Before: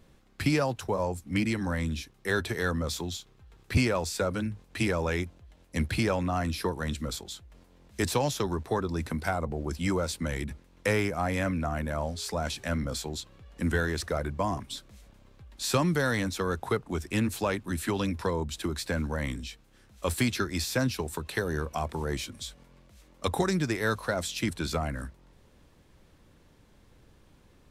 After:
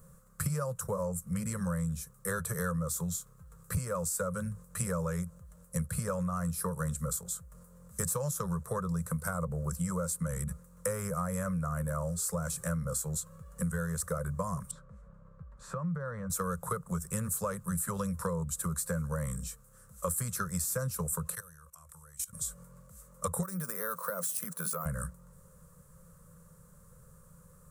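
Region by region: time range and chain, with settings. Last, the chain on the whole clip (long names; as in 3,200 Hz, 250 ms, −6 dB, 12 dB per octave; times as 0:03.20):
0:14.71–0:16.30: low-pass filter 1,800 Hz + downward compressor 10 to 1, threshold −34 dBFS
0:21.35–0:22.33: guitar amp tone stack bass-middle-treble 10-0-10 + output level in coarse steps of 19 dB + notch filter 4,600 Hz, Q 16
0:23.43–0:24.86: high-pass filter 210 Hz 24 dB per octave + bad sample-rate conversion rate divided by 3×, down filtered, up hold + downward compressor 5 to 1, threshold −31 dBFS
whole clip: drawn EQ curve 110 Hz 0 dB, 170 Hz +11 dB, 300 Hz −25 dB, 520 Hz +6 dB, 760 Hz −13 dB, 1,200 Hz +8 dB, 2,200 Hz −14 dB, 3,300 Hz −16 dB, 5,100 Hz −6 dB, 8,000 Hz +13 dB; downward compressor 6 to 1, threshold −30 dBFS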